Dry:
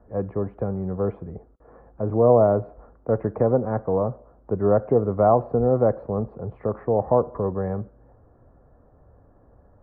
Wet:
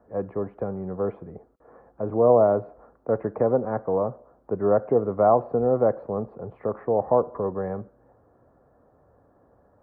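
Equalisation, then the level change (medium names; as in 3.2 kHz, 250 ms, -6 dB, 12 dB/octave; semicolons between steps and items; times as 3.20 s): high-pass 250 Hz 6 dB/octave; 0.0 dB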